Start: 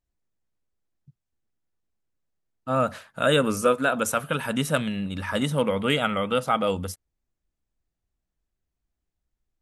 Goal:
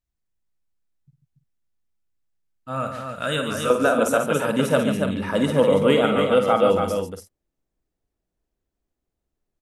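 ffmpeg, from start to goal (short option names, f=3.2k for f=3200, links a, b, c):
-af "asetnsamples=n=441:p=0,asendcmd='3.7 equalizer g 9.5',equalizer=f=420:t=o:w=2.1:g=-4.5,aecho=1:1:52|102|143|284|332:0.398|0.106|0.398|0.531|0.188,volume=-2.5dB"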